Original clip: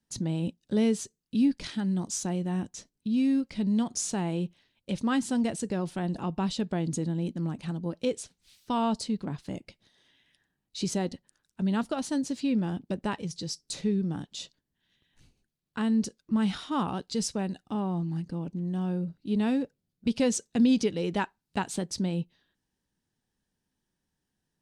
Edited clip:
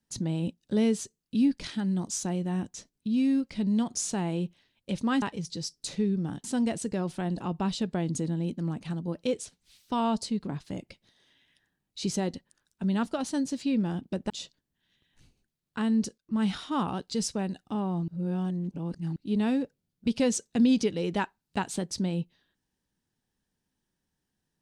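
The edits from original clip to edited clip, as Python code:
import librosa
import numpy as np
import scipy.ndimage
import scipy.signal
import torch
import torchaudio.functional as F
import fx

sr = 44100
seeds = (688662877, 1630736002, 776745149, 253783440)

y = fx.edit(x, sr, fx.move(start_s=13.08, length_s=1.22, to_s=5.22),
    fx.fade_in_from(start_s=16.18, length_s=0.25, floor_db=-17.0),
    fx.reverse_span(start_s=18.08, length_s=1.08), tone=tone)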